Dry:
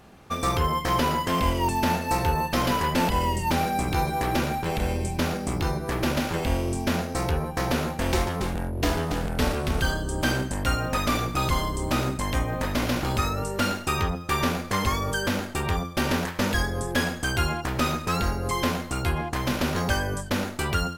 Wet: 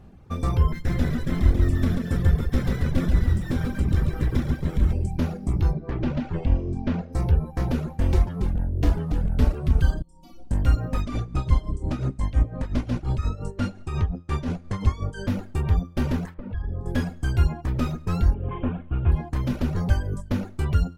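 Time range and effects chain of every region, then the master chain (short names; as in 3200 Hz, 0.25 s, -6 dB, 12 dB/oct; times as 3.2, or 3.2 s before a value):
0.72–4.93 minimum comb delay 0.54 ms + lo-fi delay 0.137 s, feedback 55%, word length 8-bit, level -4 dB
5.73–7.13 LPF 3800 Hz + bell 66 Hz -5 dB 0.72 oct
10.02–10.51 fixed phaser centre 440 Hz, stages 6 + metallic resonator 170 Hz, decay 0.4 s, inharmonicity 0.008 + flutter echo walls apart 10.6 m, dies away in 0.63 s
11.01–15.28 tremolo 5.7 Hz, depth 52% + LPF 10000 Hz 24 dB/oct
16.34–16.86 notches 50/100/150/200/250/300/350/400/450 Hz + compressor, threshold -29 dBFS + air absorption 360 m
18.34–19.12 CVSD 16 kbps + notch 2000 Hz, Q 6.6
whole clip: low shelf 280 Hz +12 dB; reverb removal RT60 0.95 s; tilt -1.5 dB/oct; gain -8 dB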